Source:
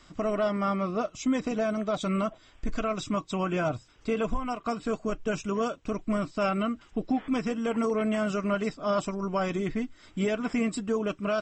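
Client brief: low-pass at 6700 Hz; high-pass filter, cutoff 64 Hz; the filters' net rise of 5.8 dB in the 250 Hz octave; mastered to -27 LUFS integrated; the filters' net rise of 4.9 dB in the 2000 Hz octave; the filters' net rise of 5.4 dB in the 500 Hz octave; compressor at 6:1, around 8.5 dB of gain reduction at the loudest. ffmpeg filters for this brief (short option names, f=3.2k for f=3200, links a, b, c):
-af "highpass=64,lowpass=6.7k,equalizer=f=250:t=o:g=6,equalizer=f=500:t=o:g=5,equalizer=f=2k:t=o:g=6.5,acompressor=threshold=-25dB:ratio=6,volume=3dB"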